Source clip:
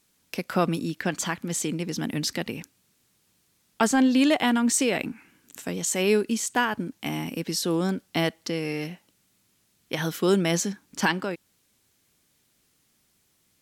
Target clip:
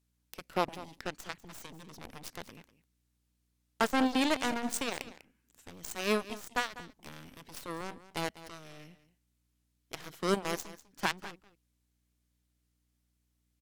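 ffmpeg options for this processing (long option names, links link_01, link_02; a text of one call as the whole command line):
ffmpeg -i in.wav -af "aeval=exprs='val(0)+0.00112*(sin(2*PI*60*n/s)+sin(2*PI*2*60*n/s)/2+sin(2*PI*3*60*n/s)/3+sin(2*PI*4*60*n/s)/4+sin(2*PI*5*60*n/s)/5)':channel_layout=same,aeval=exprs='0.316*(cos(1*acos(clip(val(0)/0.316,-1,1)))-cos(1*PI/2))+0.0794*(cos(3*acos(clip(val(0)/0.316,-1,1)))-cos(3*PI/2))+0.02*(cos(7*acos(clip(val(0)/0.316,-1,1)))-cos(7*PI/2))+0.00794*(cos(8*acos(clip(val(0)/0.316,-1,1)))-cos(8*PI/2))':channel_layout=same,aecho=1:1:197:0.158,volume=-3.5dB" out.wav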